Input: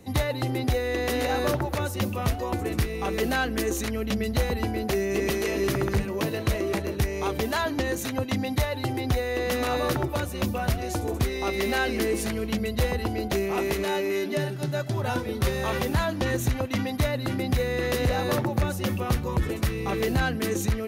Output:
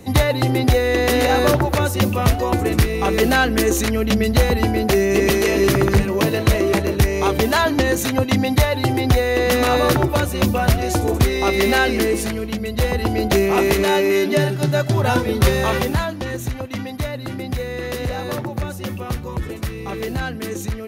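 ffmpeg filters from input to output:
-af "volume=17.5dB,afade=t=out:st=11.68:d=0.91:silence=0.421697,afade=t=in:st=12.59:d=0.72:silence=0.398107,afade=t=out:st=15.52:d=0.66:silence=0.316228"

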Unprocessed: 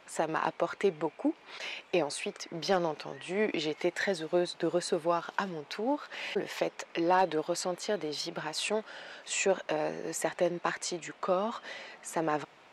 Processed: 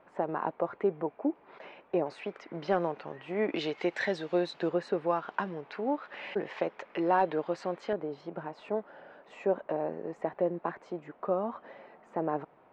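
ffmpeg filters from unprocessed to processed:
-af "asetnsamples=n=441:p=0,asendcmd='2.06 lowpass f 1900;3.56 lowpass f 4000;4.69 lowpass f 2100;7.93 lowpass f 1000',lowpass=1.1k"

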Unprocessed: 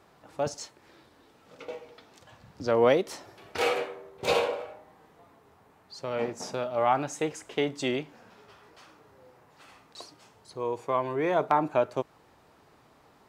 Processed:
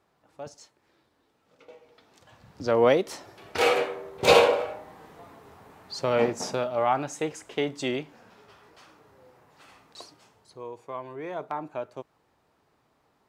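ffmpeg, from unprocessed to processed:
-af "volume=8.5dB,afade=t=in:st=1.75:d=0.92:silence=0.251189,afade=t=in:st=3.34:d=1.02:silence=0.446684,afade=t=out:st=6.02:d=0.84:silence=0.375837,afade=t=out:st=10.01:d=0.7:silence=0.354813"

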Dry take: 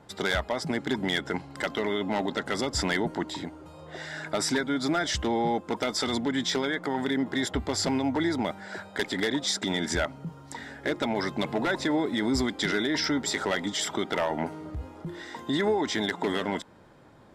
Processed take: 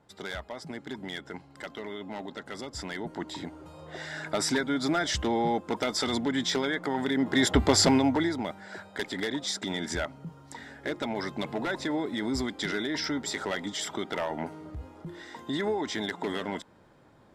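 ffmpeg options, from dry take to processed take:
-af "volume=8dB,afade=t=in:st=2.94:d=0.67:silence=0.334965,afade=t=in:st=7.14:d=0.53:silence=0.375837,afade=t=out:st=7.67:d=0.68:silence=0.251189"

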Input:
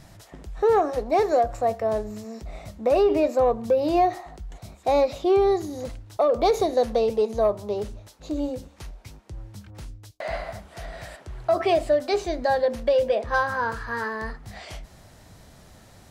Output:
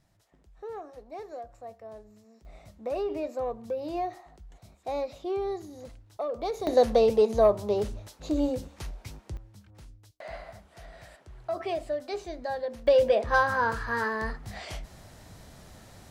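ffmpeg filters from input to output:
-af "asetnsamples=n=441:p=0,asendcmd='2.45 volume volume -11.5dB;6.67 volume volume 1dB;9.37 volume volume -10.5dB;12.87 volume volume 0dB',volume=-20dB"

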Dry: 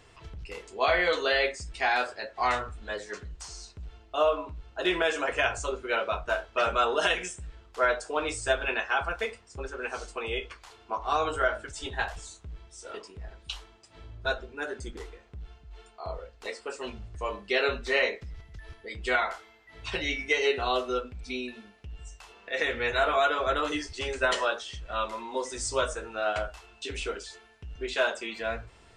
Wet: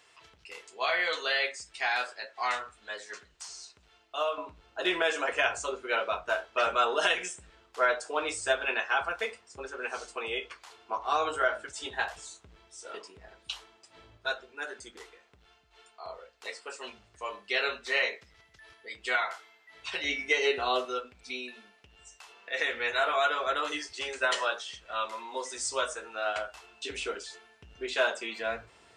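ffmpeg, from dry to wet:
-af "asetnsamples=n=441:p=0,asendcmd='4.38 highpass f 410;14.17 highpass f 1000;20.04 highpass f 310;20.85 highpass f 750;26.54 highpass f 290',highpass=f=1.3k:p=1"

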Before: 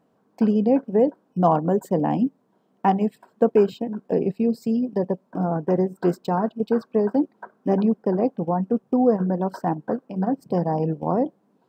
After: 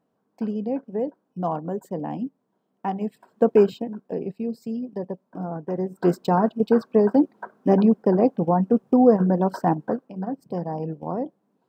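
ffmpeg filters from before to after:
-af "volume=11.5dB,afade=t=in:st=2.91:d=0.71:silence=0.334965,afade=t=out:st=3.62:d=0.42:silence=0.375837,afade=t=in:st=5.77:d=0.42:silence=0.316228,afade=t=out:st=9.73:d=0.41:silence=0.354813"

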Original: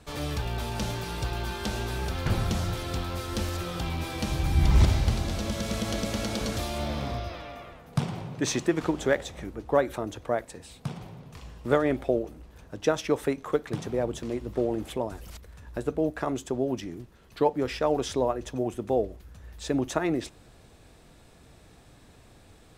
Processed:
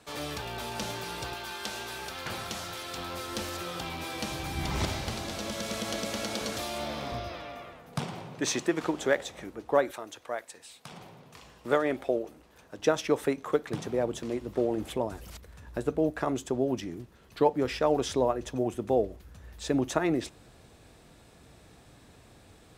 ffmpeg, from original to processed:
-af "asetnsamples=n=441:p=0,asendcmd='1.34 highpass f 900;2.98 highpass f 380;7.12 highpass f 150;7.96 highpass f 320;9.91 highpass f 1300;10.92 highpass f 420;12.79 highpass f 150;14.78 highpass f 57',highpass=f=360:p=1"

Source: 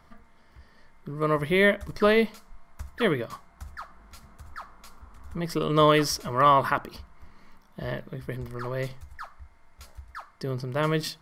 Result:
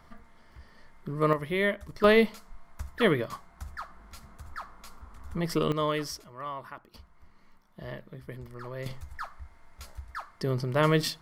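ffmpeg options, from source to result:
-af "asetnsamples=n=441:p=0,asendcmd='1.33 volume volume -6.5dB;2.04 volume volume 0.5dB;5.72 volume volume -9.5dB;6.24 volume volume -18.5dB;6.94 volume volume -7.5dB;8.86 volume volume 2dB',volume=1dB"

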